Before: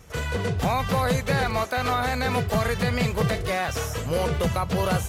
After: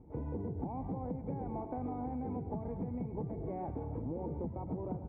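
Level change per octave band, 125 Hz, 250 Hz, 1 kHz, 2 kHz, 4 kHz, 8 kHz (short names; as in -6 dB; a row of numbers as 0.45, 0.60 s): -14.5 dB, -9.5 dB, -17.5 dB, under -35 dB, under -40 dB, under -40 dB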